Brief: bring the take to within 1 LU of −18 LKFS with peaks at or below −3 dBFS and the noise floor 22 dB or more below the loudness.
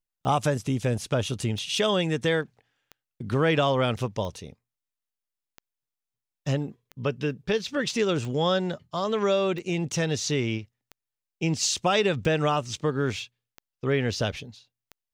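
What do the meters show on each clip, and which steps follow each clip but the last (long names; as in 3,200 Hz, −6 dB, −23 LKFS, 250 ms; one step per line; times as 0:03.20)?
number of clicks 12; integrated loudness −26.5 LKFS; sample peak −9.5 dBFS; target loudness −18.0 LKFS
→ click removal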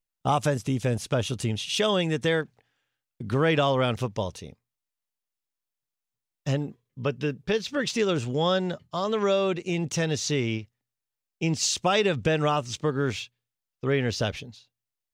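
number of clicks 0; integrated loudness −26.5 LKFS; sample peak −9.5 dBFS; target loudness −18.0 LKFS
→ level +8.5 dB
brickwall limiter −3 dBFS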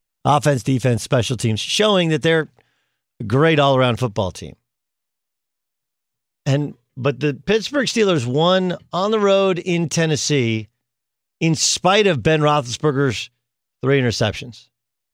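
integrated loudness −18.0 LKFS; sample peak −3.0 dBFS; background noise floor −79 dBFS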